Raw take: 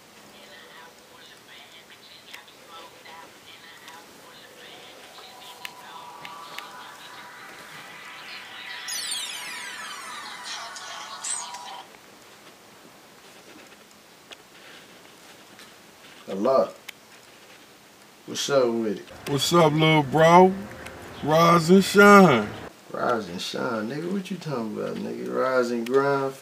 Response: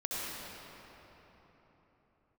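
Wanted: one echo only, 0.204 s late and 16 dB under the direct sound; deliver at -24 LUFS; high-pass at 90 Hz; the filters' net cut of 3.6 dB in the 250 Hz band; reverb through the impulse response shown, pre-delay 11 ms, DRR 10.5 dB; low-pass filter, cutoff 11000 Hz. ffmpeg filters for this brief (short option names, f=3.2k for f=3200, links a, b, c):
-filter_complex "[0:a]highpass=90,lowpass=11k,equalizer=f=250:t=o:g=-5.5,aecho=1:1:204:0.158,asplit=2[a][b];[1:a]atrim=start_sample=2205,adelay=11[c];[b][c]afir=irnorm=-1:irlink=0,volume=-16dB[d];[a][d]amix=inputs=2:normalize=0,volume=-1dB"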